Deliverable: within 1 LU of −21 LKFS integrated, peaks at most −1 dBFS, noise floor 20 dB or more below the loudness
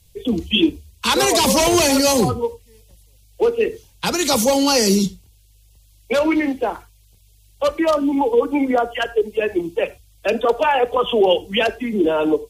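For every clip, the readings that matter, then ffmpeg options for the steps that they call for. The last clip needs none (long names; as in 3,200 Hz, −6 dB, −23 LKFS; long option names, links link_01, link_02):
integrated loudness −18.5 LKFS; sample peak −3.0 dBFS; target loudness −21.0 LKFS
→ -af "volume=-2.5dB"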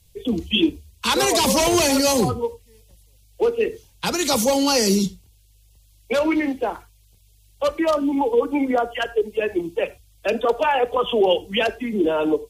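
integrated loudness −21.0 LKFS; sample peak −5.5 dBFS; background noise floor −55 dBFS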